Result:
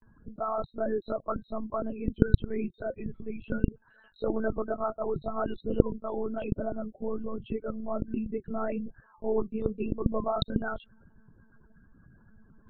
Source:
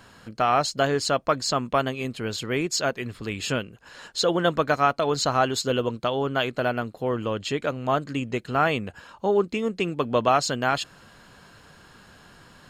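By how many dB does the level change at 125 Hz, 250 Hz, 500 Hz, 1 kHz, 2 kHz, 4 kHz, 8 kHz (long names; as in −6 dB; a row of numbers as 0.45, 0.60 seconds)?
−3.0 dB, −3.0 dB, −7.0 dB, −13.0 dB, −15.5 dB, −19.5 dB, below −40 dB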